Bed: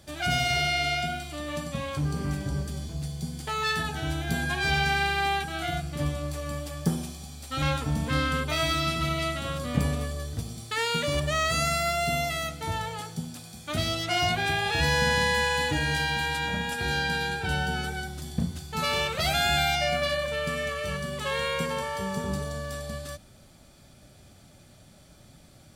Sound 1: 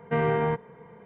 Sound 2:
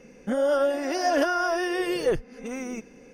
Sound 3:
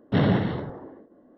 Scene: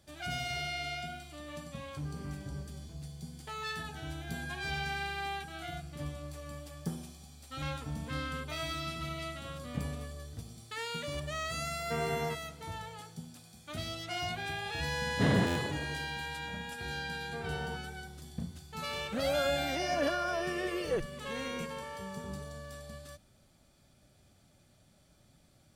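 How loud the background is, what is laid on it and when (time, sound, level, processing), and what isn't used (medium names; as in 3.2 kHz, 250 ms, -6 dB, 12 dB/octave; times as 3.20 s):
bed -11 dB
11.79 s: add 1 -10.5 dB
15.07 s: add 3 -6.5 dB + buffer glitch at 0.39 s
17.21 s: add 1 -17 dB + low-pass 1.5 kHz
18.85 s: add 2 -9 dB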